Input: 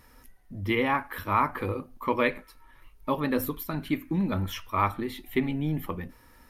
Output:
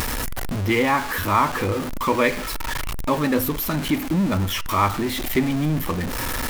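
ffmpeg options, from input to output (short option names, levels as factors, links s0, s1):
-af "aeval=exprs='val(0)+0.5*0.0376*sgn(val(0))':c=same,acompressor=mode=upward:threshold=0.0501:ratio=2.5,volume=1.58"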